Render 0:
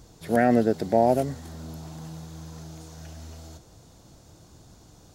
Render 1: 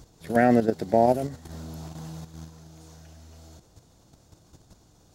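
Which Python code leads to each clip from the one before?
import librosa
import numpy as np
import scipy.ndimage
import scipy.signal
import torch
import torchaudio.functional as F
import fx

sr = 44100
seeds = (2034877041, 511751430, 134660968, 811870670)

y = fx.level_steps(x, sr, step_db=10)
y = y * librosa.db_to_amplitude(2.0)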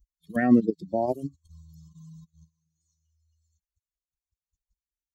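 y = fx.bin_expand(x, sr, power=3.0)
y = fx.small_body(y, sr, hz=(200.0, 280.0, 1100.0, 1800.0), ring_ms=25, db=12)
y = y * librosa.db_to_amplitude(-6.5)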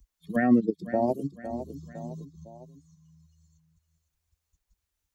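y = fx.echo_feedback(x, sr, ms=507, feedback_pct=36, wet_db=-15.0)
y = fx.band_squash(y, sr, depth_pct=40)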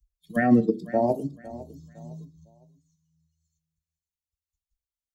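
y = fx.room_shoebox(x, sr, seeds[0], volume_m3=190.0, walls='furnished', distance_m=0.4)
y = fx.band_widen(y, sr, depth_pct=70)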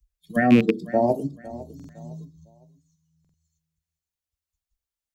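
y = fx.rattle_buzz(x, sr, strikes_db=-22.0, level_db=-18.0)
y = fx.buffer_glitch(y, sr, at_s=(1.75, 3.2), block=2048, repeats=2)
y = y * librosa.db_to_amplitude(2.5)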